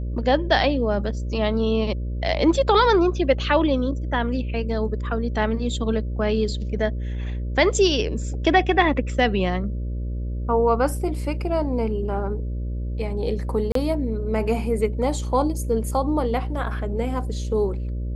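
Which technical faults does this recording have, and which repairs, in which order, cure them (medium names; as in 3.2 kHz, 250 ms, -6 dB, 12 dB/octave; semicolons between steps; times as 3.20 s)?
buzz 60 Hz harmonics 10 -27 dBFS
13.72–13.75 s: dropout 33 ms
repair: de-hum 60 Hz, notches 10; interpolate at 13.72 s, 33 ms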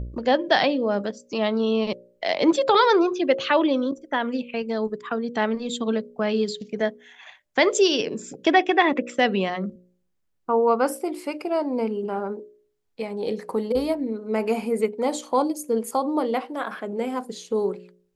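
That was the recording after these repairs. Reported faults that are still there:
nothing left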